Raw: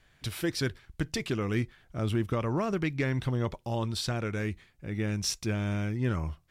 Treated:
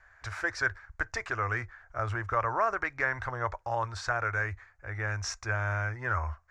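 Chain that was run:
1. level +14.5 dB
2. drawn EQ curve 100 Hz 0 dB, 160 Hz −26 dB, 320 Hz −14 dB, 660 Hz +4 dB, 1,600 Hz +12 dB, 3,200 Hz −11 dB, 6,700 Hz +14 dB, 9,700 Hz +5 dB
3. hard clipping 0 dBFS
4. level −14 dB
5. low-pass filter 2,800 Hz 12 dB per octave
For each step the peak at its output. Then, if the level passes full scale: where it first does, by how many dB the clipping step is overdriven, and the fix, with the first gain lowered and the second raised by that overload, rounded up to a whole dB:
−2.5, +5.0, 0.0, −14.0, −15.0 dBFS
step 2, 5.0 dB
step 1 +9.5 dB, step 4 −9 dB

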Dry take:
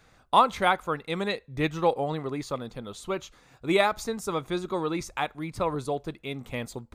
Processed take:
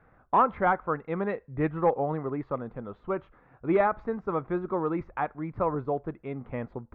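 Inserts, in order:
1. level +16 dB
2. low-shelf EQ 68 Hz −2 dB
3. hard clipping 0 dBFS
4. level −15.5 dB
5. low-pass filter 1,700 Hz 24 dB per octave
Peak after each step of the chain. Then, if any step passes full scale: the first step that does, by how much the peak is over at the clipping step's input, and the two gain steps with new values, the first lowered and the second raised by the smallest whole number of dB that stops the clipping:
+9.5, +9.5, 0.0, −15.5, −14.0 dBFS
step 1, 9.5 dB
step 1 +6 dB, step 4 −5.5 dB

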